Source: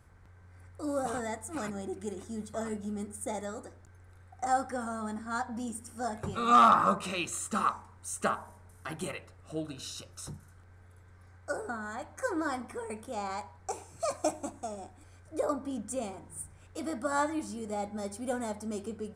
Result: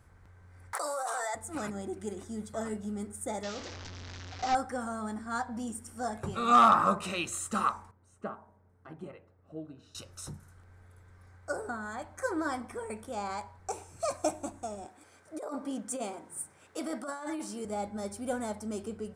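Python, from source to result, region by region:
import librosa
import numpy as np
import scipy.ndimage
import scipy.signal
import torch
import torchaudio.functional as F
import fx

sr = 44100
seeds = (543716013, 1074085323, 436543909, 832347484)

y = fx.chain(x, sr, fx.highpass(hz=690.0, slope=24),
    fx.peak_eq(hz=2700.0, db=-8.0, octaves=0.76),
    fx.env_flatten(amount_pct=100), at=(0.73, 1.35))
y = fx.chain(y, sr, fx.delta_mod(bps=32000, step_db=-38.5),
    fx.high_shelf(hz=4000.0, db=11.5), at=(3.43, 4.55))
y = fx.chain(y, sr, fx.bandpass_q(hz=190.0, q=0.6),
    fx.low_shelf(hz=280.0, db=-8.0), at=(7.91, 9.95))
y = fx.chain(y, sr, fx.highpass(hz=250.0, slope=12),
    fx.over_compress(threshold_db=-36.0, ratio=-1.0), at=(14.85, 17.65))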